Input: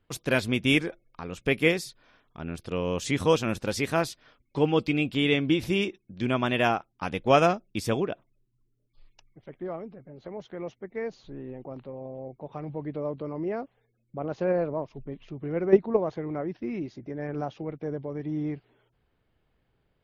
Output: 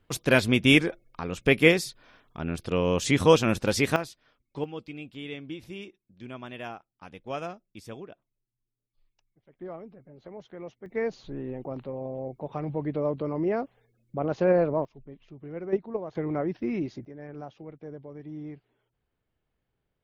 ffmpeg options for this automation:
-af "asetnsamples=n=441:p=0,asendcmd='3.96 volume volume -7.5dB;4.64 volume volume -14.5dB;9.59 volume volume -4.5dB;10.86 volume volume 4dB;14.85 volume volume -8dB;16.15 volume volume 3dB;17.05 volume volume -8.5dB',volume=1.58"

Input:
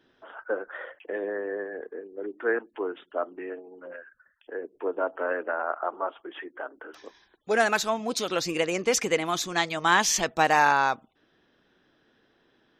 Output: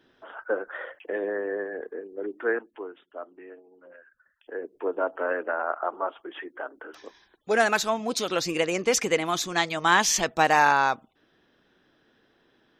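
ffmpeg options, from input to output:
-af "volume=3.98,afade=t=out:st=2.33:d=0.58:silence=0.281838,afade=t=in:st=3.96:d=0.67:silence=0.316228"

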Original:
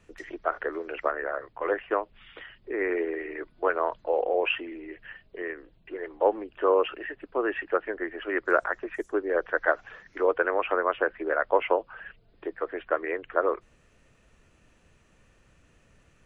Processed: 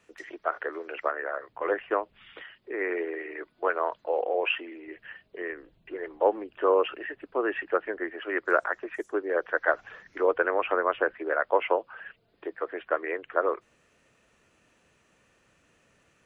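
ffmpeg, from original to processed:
-af "asetnsamples=n=441:p=0,asendcmd='1.49 highpass f 120;2.42 highpass f 380;4.88 highpass f 180;5.53 highpass f 51;6.18 highpass f 120;8.1 highpass f 270;9.74 highpass f 70;11.14 highpass f 270',highpass=f=430:p=1"

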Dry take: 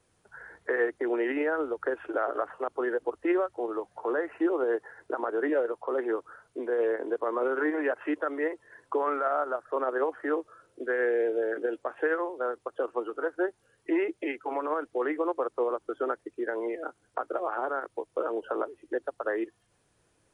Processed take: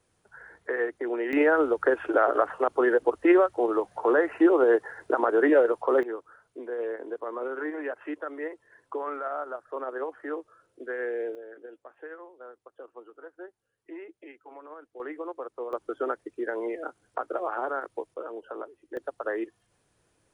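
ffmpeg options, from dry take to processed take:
-af "asetnsamples=n=441:p=0,asendcmd='1.33 volume volume 7dB;6.03 volume volume -5dB;11.35 volume volume -15dB;15 volume volume -7.5dB;15.73 volume volume 0.5dB;18.14 volume volume -7dB;18.97 volume volume -0.5dB',volume=0.841"

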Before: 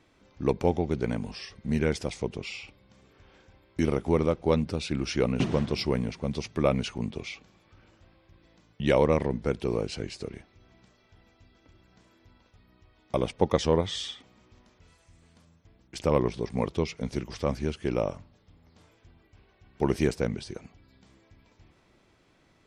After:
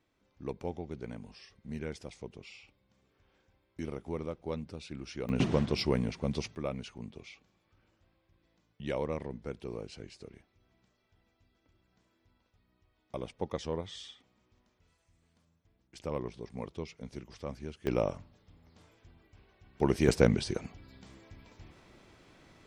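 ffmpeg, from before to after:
-af "asetnsamples=n=441:p=0,asendcmd='5.29 volume volume -2dB;6.55 volume volume -12dB;17.87 volume volume -2dB;20.08 volume volume 5dB',volume=0.224"

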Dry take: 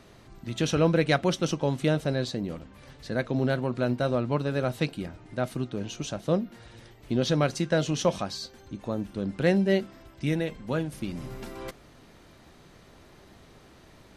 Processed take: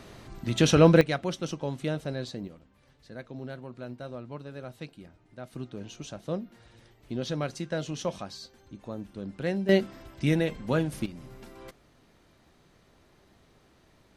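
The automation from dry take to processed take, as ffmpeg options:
-af "asetnsamples=n=441:p=0,asendcmd='1.01 volume volume -6dB;2.48 volume volume -13.5dB;5.53 volume volume -7dB;9.69 volume volume 2.5dB;11.06 volume volume -8dB',volume=1.78"

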